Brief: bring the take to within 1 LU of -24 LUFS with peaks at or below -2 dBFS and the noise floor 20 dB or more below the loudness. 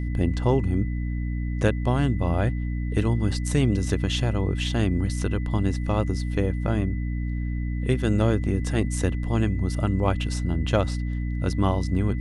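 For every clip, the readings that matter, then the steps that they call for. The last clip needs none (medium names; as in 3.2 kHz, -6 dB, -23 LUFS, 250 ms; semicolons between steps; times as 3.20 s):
hum 60 Hz; highest harmonic 300 Hz; hum level -25 dBFS; steady tone 2 kHz; tone level -45 dBFS; loudness -25.0 LUFS; peak level -6.5 dBFS; loudness target -24.0 LUFS
-> de-hum 60 Hz, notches 5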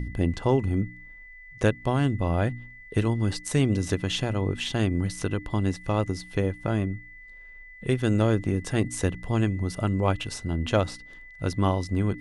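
hum not found; steady tone 2 kHz; tone level -45 dBFS
-> band-stop 2 kHz, Q 30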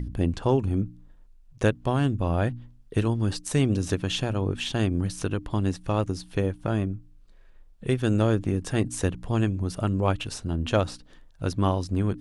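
steady tone not found; loudness -27.0 LUFS; peak level -7.0 dBFS; loudness target -24.0 LUFS
-> trim +3 dB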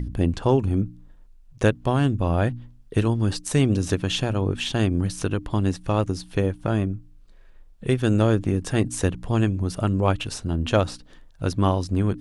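loudness -24.0 LUFS; peak level -4.0 dBFS; noise floor -50 dBFS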